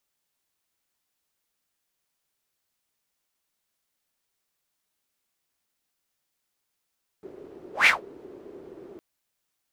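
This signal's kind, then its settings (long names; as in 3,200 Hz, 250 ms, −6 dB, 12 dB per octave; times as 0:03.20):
pass-by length 1.76 s, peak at 0:00.64, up 0.15 s, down 0.16 s, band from 380 Hz, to 2,300 Hz, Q 6, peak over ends 28.5 dB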